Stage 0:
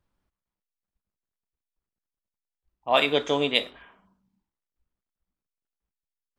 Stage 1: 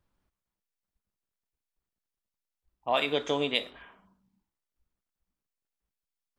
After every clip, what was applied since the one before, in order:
downward compressor 2 to 1, threshold −27 dBFS, peak gain reduction 7 dB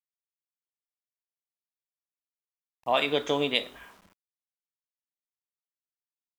bit-depth reduction 10 bits, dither none
level +2 dB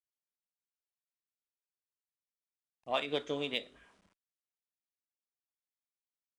rotating-speaker cabinet horn 6 Hz, later 0.7 Hz, at 0:02.84
downsampling to 22,050 Hz
harmonic generator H 7 −34 dB, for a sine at −11 dBFS
level −6.5 dB

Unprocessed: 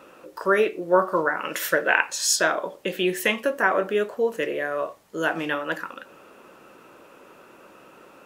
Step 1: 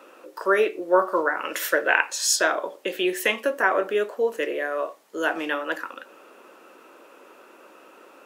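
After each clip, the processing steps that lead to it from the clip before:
high-pass filter 260 Hz 24 dB per octave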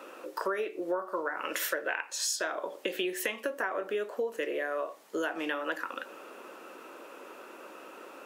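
downward compressor 10 to 1, threshold −31 dBFS, peak gain reduction 18 dB
level +2 dB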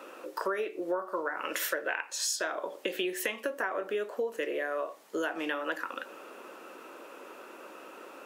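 no processing that can be heard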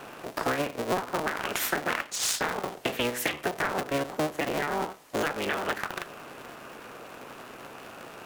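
sub-harmonics by changed cycles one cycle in 3, inverted
level +3.5 dB

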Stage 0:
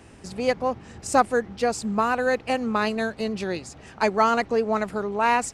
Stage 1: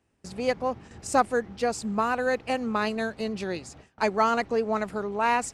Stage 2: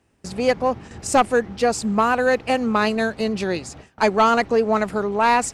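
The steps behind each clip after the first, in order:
noise gate with hold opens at −34 dBFS; level −3 dB
sine wavefolder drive 4 dB, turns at −8 dBFS

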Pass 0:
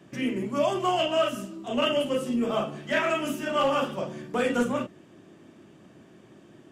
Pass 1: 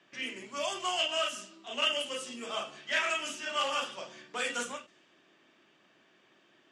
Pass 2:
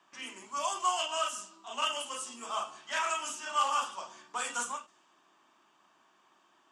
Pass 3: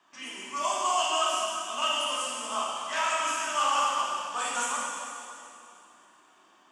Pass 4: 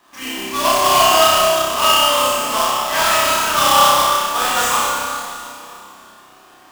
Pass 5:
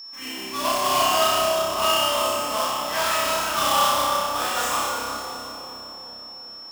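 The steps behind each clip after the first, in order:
low-pass that shuts in the quiet parts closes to 3,000 Hz, open at −20 dBFS; meter weighting curve ITU-R 468; every ending faded ahead of time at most 190 dB per second; level −7 dB
octave-band graphic EQ 125/250/500/1,000/2,000/4,000/8,000 Hz −11/−3/−10/+12/−9/−4/+6 dB
dense smooth reverb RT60 2.7 s, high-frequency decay 0.95×, DRR −4.5 dB
each half-wave held at its own peak; flutter between parallel walls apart 5.3 metres, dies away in 0.78 s; level +6 dB
delay with a low-pass on its return 367 ms, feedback 58%, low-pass 650 Hz, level −3.5 dB; steady tone 5,400 Hz −29 dBFS; high-pass filter 40 Hz; level −8 dB

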